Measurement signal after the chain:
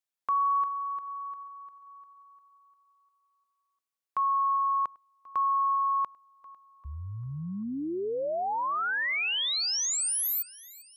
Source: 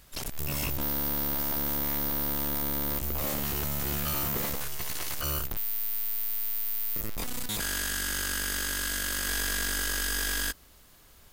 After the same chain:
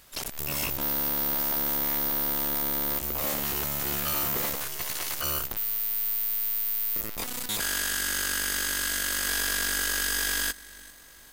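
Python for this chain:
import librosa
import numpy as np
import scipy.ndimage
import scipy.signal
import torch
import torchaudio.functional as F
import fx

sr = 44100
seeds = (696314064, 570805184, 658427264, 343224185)

y = fx.low_shelf(x, sr, hz=220.0, db=-10.0)
y = fx.echo_feedback(y, sr, ms=396, feedback_pct=52, wet_db=-21.0)
y = F.gain(torch.from_numpy(y), 3.0).numpy()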